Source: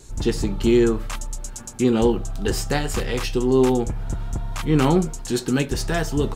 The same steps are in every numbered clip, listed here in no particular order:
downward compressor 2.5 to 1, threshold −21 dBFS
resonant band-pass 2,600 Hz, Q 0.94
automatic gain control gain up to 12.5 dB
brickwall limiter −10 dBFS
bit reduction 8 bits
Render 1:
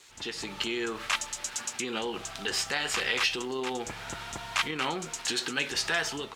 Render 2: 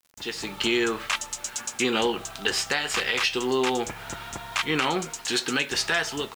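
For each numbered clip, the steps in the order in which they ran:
bit reduction, then downward compressor, then automatic gain control, then brickwall limiter, then resonant band-pass
resonant band-pass, then automatic gain control, then bit reduction, then downward compressor, then brickwall limiter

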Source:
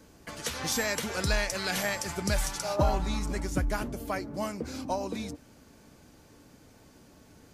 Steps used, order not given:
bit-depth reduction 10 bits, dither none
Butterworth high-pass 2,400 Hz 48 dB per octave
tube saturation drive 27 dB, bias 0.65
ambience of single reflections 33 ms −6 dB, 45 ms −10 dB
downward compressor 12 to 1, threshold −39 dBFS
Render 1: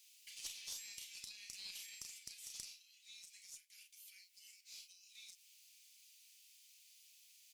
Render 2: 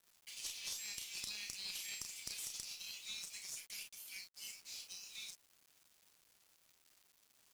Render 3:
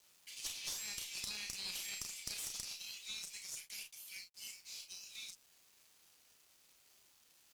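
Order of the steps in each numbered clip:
ambience of single reflections, then bit-depth reduction, then downward compressor, then Butterworth high-pass, then tube saturation
Butterworth high-pass, then downward compressor, then ambience of single reflections, then tube saturation, then bit-depth reduction
Butterworth high-pass, then bit-depth reduction, then ambience of single reflections, then tube saturation, then downward compressor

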